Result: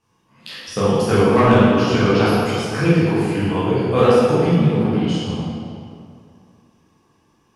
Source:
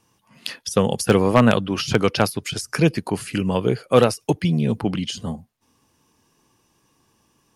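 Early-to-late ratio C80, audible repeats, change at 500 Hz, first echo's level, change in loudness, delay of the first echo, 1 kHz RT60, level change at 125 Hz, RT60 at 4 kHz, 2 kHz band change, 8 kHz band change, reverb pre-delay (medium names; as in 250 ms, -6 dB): -1.5 dB, no echo, +4.0 dB, no echo, +4.0 dB, no echo, 2.3 s, +4.5 dB, 1.6 s, +3.0 dB, -5.0 dB, 10 ms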